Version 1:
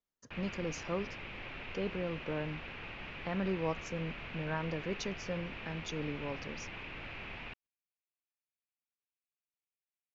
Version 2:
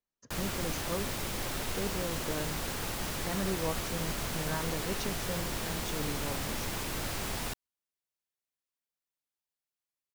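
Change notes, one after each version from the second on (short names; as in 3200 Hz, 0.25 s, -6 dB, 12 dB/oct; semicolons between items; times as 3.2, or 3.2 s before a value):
background: remove ladder low-pass 2800 Hz, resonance 65%; master: remove LPF 7600 Hz 24 dB/oct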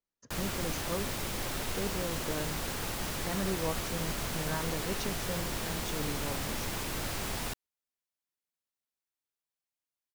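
none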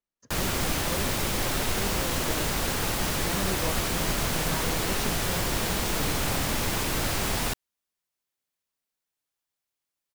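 background +8.0 dB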